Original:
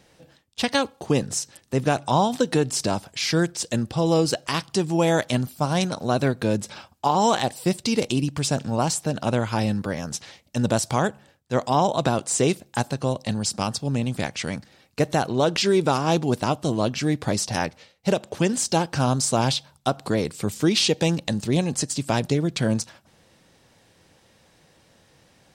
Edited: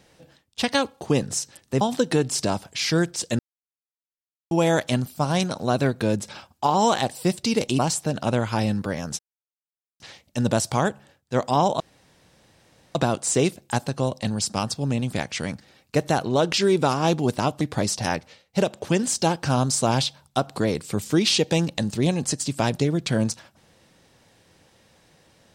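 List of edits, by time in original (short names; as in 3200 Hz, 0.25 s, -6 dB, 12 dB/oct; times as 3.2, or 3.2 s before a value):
1.81–2.22 cut
3.8–4.92 mute
8.2–8.79 cut
10.19 insert silence 0.81 s
11.99 insert room tone 1.15 s
16.65–17.11 cut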